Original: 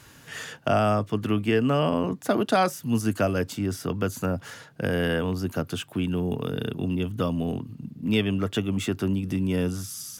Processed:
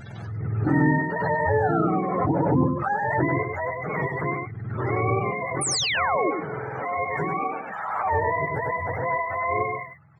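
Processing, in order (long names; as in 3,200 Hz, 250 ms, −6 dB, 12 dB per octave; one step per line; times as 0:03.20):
frequency axis turned over on the octave scale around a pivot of 440 Hz
sound drawn into the spectrogram fall, 0:05.61–0:06.31, 280–10,000 Hz −26 dBFS
on a send: single-tap delay 99 ms −4.5 dB
on the sum: background raised ahead of every attack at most 30 dB per second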